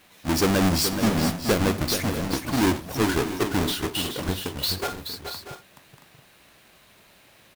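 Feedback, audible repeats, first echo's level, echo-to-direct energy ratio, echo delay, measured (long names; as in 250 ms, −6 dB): repeats not evenly spaced, 4, −18.5 dB, −6.0 dB, 84 ms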